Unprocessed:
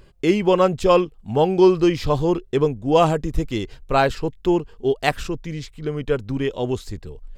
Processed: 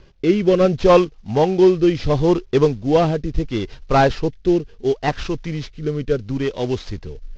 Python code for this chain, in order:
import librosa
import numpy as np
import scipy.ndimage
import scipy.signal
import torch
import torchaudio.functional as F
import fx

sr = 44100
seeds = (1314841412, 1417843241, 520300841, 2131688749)

y = fx.cvsd(x, sr, bps=32000)
y = fx.rotary(y, sr, hz=0.7)
y = y * librosa.db_to_amplitude(4.5)